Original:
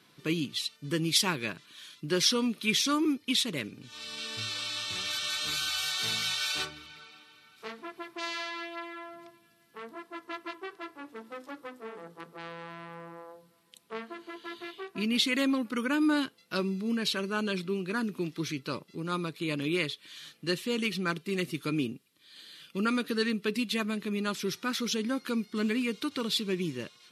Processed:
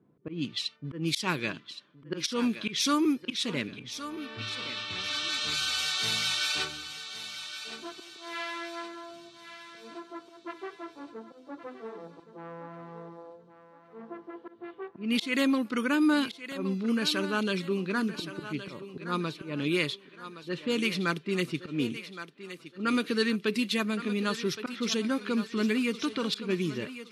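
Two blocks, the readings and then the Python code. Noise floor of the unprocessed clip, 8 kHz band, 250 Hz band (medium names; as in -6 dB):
-63 dBFS, -2.0 dB, +1.5 dB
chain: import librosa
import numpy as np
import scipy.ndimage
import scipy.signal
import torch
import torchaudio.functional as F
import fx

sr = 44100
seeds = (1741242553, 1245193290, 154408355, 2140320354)

y = fx.auto_swell(x, sr, attack_ms=161.0)
y = fx.env_lowpass(y, sr, base_hz=430.0, full_db=-26.5)
y = fx.echo_thinned(y, sr, ms=1118, feedback_pct=43, hz=330.0, wet_db=-11)
y = y * 10.0 ** (2.0 / 20.0)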